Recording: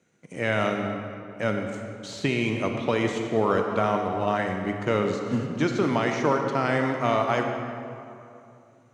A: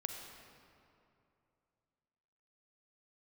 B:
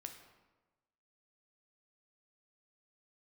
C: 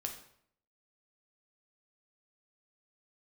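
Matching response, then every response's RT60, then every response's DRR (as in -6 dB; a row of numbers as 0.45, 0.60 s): A; 2.7, 1.2, 0.65 s; 3.5, 4.5, 2.5 dB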